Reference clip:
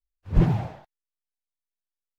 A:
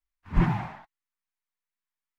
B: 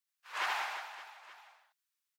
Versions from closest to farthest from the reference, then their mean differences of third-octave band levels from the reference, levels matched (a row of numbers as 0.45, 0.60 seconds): A, B; 3.5, 20.0 decibels